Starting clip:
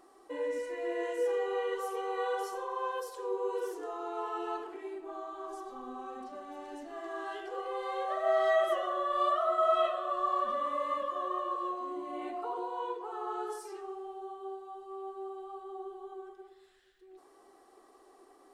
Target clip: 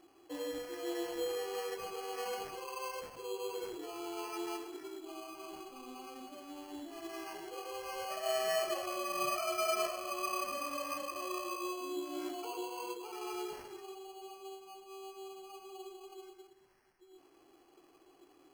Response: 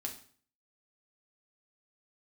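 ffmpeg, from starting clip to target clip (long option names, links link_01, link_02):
-af "superequalizer=6b=2.51:12b=3.16:15b=2.82,acrusher=samples=12:mix=1:aa=0.000001,volume=-6.5dB"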